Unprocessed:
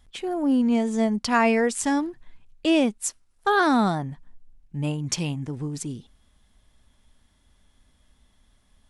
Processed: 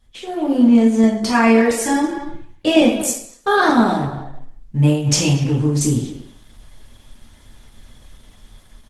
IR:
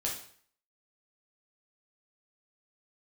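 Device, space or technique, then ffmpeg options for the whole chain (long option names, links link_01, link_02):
speakerphone in a meeting room: -filter_complex "[1:a]atrim=start_sample=2205[link_01];[0:a][link_01]afir=irnorm=-1:irlink=0,asplit=2[link_02][link_03];[link_03]adelay=230,highpass=300,lowpass=3400,asoftclip=type=hard:threshold=-12dB,volume=-12dB[link_04];[link_02][link_04]amix=inputs=2:normalize=0,dynaudnorm=framelen=130:gausssize=7:maxgain=14.5dB,volume=-1dB" -ar 48000 -c:a libopus -b:a 16k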